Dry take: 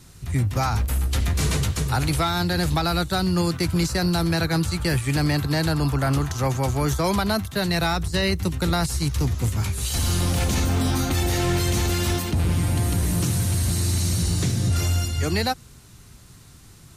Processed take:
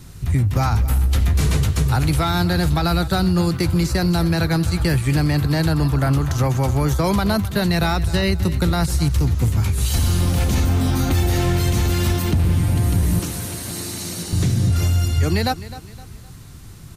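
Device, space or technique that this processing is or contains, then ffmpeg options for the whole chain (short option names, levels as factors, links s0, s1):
ASMR close-microphone chain: -filter_complex "[0:a]lowshelf=f=220:g=5.5,acompressor=threshold=0.112:ratio=6,highshelf=f=8000:g=5,asettb=1/sr,asplit=3[s0][s1][s2];[s0]atrim=end=13.194[s3];[s1]atrim=start=13.19:end=14.33,asetpts=PTS-STARTPTS,afade=t=in:d=0.004:c=qsin,afade=t=out:st=1.136:d=0.004:c=qsin,highpass=280[s4];[s2]atrim=start=14.326[s5];[s3][s4]acrossfade=d=0.004:c1=hsin:c2=qsin[s6];[s6][s5]acrossfade=d=0.004:c1=qsin:c2=hsin,equalizer=f=8700:t=o:w=1.8:g=-5,aecho=1:1:258|516|774:0.158|0.0602|0.0229,volume=1.68"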